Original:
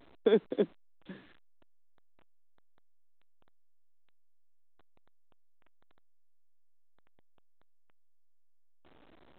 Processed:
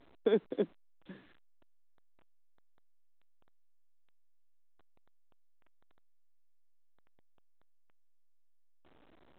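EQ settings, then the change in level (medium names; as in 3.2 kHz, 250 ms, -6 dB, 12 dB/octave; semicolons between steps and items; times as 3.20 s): distance through air 64 m; -3.0 dB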